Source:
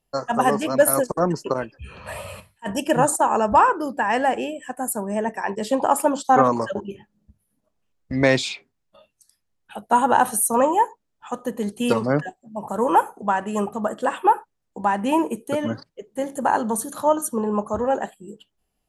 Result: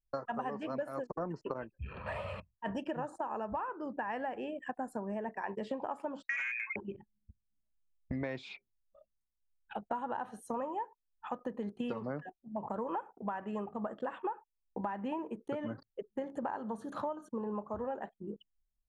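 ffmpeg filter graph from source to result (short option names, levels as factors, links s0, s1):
-filter_complex "[0:a]asettb=1/sr,asplit=3[s0][s1][s2];[s0]atrim=end=6.274[s3];[s1]atrim=start=6.27:end=6.76,asetpts=PTS-STARTPTS,afade=t=in:d=0.004:c=qsin,afade=t=out:st=0.486:d=0.004:c=qsin,tiltshelf=f=1100:g=9.5,lowpass=f=2300:t=q:w=0.5098,lowpass=f=2300:t=q:w=0.6013,lowpass=f=2300:t=q:w=0.9,lowpass=f=2300:t=q:w=2.563,afreqshift=-2700,volume=2.99,asoftclip=hard,volume=0.335[s4];[s2]atrim=start=6.756[s5];[s3][s4]acrossfade=d=0.004:c1=hsin:c2=qsin[s6];[s6][s5]acrossfade=d=0.004:c1=qsin:c2=hsin,anlmdn=0.158,lowpass=2500,acompressor=threshold=0.0251:ratio=10,volume=0.75"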